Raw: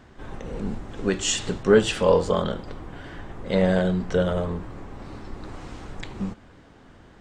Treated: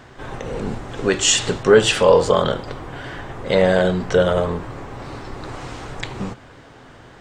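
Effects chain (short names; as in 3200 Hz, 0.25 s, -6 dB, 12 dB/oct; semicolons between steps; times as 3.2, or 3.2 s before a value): thirty-one-band EQ 125 Hz +7 dB, 200 Hz -7 dB, 315 Hz -3 dB; in parallel at +1 dB: limiter -15 dBFS, peak gain reduction 8 dB; on the sum: low shelf 160 Hz -9 dB; gain +3 dB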